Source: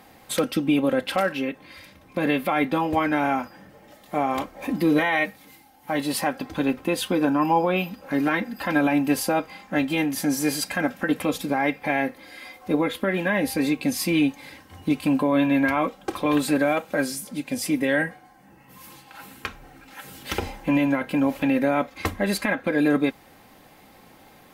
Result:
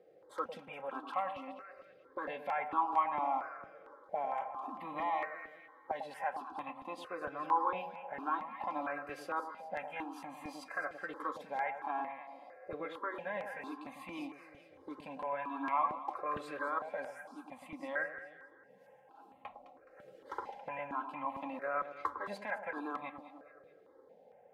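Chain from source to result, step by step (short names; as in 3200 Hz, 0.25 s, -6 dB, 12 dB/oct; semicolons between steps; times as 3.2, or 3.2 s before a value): auto-wah 470–1100 Hz, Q 3.6, up, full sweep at -24 dBFS; echo with dull and thin repeats by turns 0.105 s, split 1000 Hz, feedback 65%, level -6.5 dB; step phaser 4.4 Hz 250–1500 Hz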